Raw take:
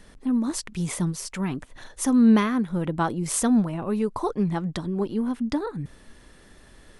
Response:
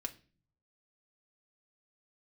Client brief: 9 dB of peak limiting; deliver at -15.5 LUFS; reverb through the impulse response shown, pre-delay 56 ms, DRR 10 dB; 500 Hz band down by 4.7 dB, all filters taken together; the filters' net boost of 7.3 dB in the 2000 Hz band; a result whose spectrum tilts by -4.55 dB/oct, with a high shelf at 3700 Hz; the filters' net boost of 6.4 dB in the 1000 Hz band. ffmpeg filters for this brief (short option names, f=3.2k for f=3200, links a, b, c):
-filter_complex "[0:a]equalizer=f=500:t=o:g=-8.5,equalizer=f=1k:t=o:g=8,equalizer=f=2k:t=o:g=5.5,highshelf=f=3.7k:g=6,alimiter=limit=-15dB:level=0:latency=1,asplit=2[a][b];[1:a]atrim=start_sample=2205,adelay=56[c];[b][c]afir=irnorm=-1:irlink=0,volume=-9dB[d];[a][d]amix=inputs=2:normalize=0,volume=10dB"